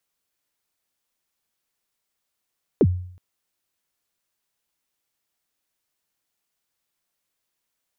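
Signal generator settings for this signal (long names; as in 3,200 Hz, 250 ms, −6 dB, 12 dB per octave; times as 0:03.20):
synth kick length 0.37 s, from 500 Hz, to 90 Hz, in 50 ms, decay 0.60 s, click off, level −10 dB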